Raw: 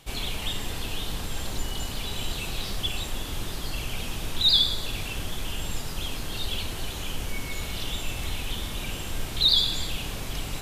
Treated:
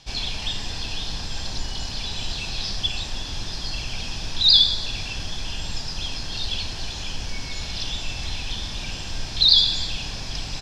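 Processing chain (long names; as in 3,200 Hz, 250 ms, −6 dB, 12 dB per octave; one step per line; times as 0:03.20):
low-pass with resonance 5,200 Hz, resonance Q 4.4
comb filter 1.2 ms, depth 30%
level −1 dB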